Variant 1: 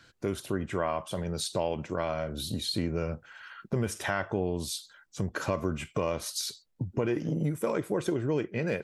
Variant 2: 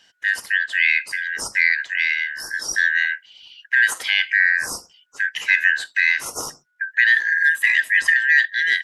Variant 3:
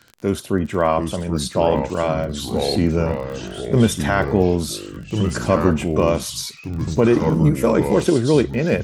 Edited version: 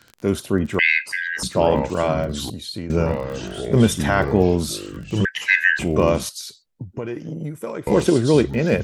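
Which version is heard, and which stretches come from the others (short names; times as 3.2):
3
0.79–1.43 from 2
2.5–2.9 from 1
5.25–5.79 from 2
6.29–7.87 from 1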